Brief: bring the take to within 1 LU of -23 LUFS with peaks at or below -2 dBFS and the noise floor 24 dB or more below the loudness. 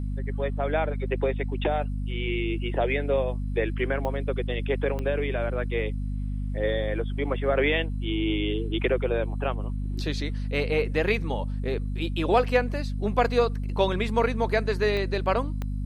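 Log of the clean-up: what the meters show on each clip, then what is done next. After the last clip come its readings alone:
clicks 4; hum 50 Hz; harmonics up to 250 Hz; hum level -27 dBFS; loudness -27.0 LUFS; peak -8.5 dBFS; loudness target -23.0 LUFS
-> de-click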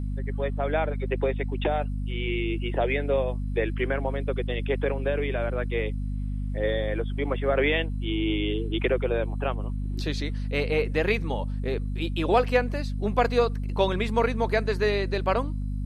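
clicks 0; hum 50 Hz; harmonics up to 250 Hz; hum level -27 dBFS
-> notches 50/100/150/200/250 Hz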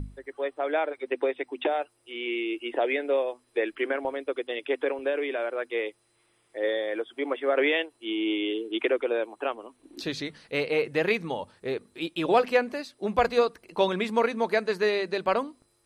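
hum none; loudness -28.0 LUFS; peak -10.0 dBFS; loudness target -23.0 LUFS
-> gain +5 dB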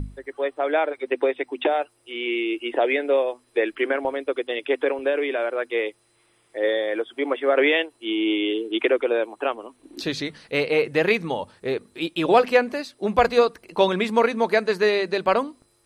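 loudness -23.0 LUFS; peak -5.0 dBFS; noise floor -63 dBFS

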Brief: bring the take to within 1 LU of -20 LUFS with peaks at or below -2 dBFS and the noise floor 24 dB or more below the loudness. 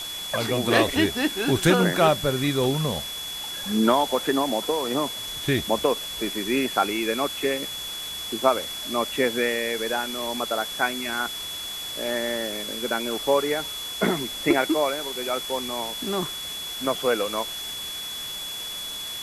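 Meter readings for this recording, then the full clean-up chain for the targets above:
steady tone 3400 Hz; tone level -32 dBFS; noise floor -34 dBFS; noise floor target -49 dBFS; loudness -25.0 LUFS; peak -4.0 dBFS; loudness target -20.0 LUFS
-> notch 3400 Hz, Q 30; denoiser 15 dB, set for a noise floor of -34 dBFS; gain +5 dB; limiter -2 dBFS

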